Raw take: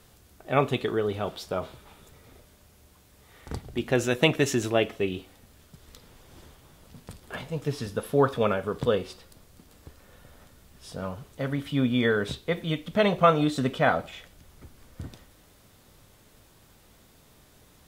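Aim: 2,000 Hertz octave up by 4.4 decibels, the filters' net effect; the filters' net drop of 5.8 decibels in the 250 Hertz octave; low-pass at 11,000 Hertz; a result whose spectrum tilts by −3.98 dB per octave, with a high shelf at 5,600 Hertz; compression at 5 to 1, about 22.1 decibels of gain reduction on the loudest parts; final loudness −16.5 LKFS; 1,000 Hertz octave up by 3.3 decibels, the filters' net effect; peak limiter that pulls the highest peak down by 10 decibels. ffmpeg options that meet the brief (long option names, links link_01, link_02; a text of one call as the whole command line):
ffmpeg -i in.wav -af "lowpass=11000,equalizer=frequency=250:width_type=o:gain=-8,equalizer=frequency=1000:width_type=o:gain=3.5,equalizer=frequency=2000:width_type=o:gain=4,highshelf=frequency=5600:gain=5.5,acompressor=threshold=-37dB:ratio=5,volume=29dB,alimiter=limit=-2.5dB:level=0:latency=1" out.wav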